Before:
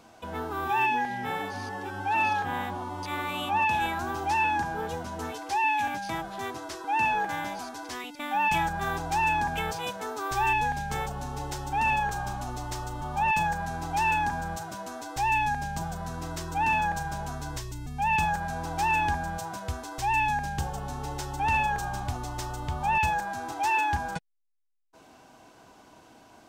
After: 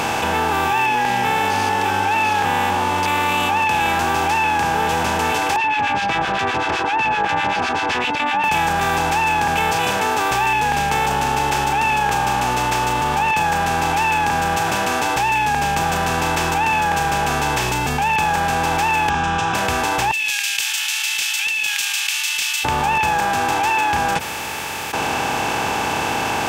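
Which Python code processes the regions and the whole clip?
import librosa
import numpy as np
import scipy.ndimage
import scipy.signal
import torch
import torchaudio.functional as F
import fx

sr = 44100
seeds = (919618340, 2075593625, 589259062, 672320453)

y = fx.chain(x, sr, fx.lowpass(hz=3900.0, slope=24),
    fx.harmonic_tremolo(hz=7.8, depth_pct=100, crossover_hz=1400.0), at=(5.56, 8.44))
y = fx.chain(y, sr, fx.lowpass(hz=4800.0, slope=24),
    fx.fixed_phaser(hz=3000.0, stages=8), at=(19.09, 19.55))
y = fx.chain(y, sr, fx.steep_highpass(hz=2600.0, slope=48),
    fx.over_compress(threshold_db=-41.0, ratio=-1.0), at=(20.11, 22.65))
y = fx.bin_compress(y, sr, power=0.4)
y = fx.highpass(y, sr, hz=170.0, slope=6)
y = fx.env_flatten(y, sr, amount_pct=70)
y = y * librosa.db_to_amplitude(3.5)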